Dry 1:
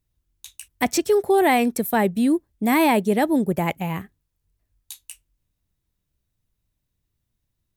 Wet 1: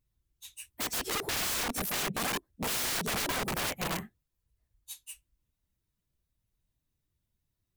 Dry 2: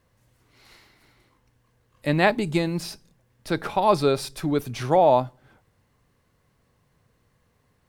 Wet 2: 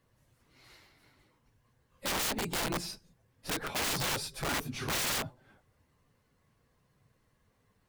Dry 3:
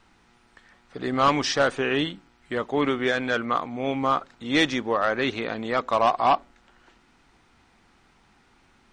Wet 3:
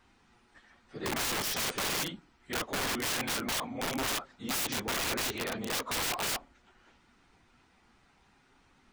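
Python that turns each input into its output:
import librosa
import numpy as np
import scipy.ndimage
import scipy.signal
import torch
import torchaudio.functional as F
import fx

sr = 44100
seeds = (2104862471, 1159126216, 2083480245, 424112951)

y = fx.phase_scramble(x, sr, seeds[0], window_ms=50)
y = (np.mod(10.0 ** (22.0 / 20.0) * y + 1.0, 2.0) - 1.0) / 10.0 ** (22.0 / 20.0)
y = y * 10.0 ** (-5.0 / 20.0)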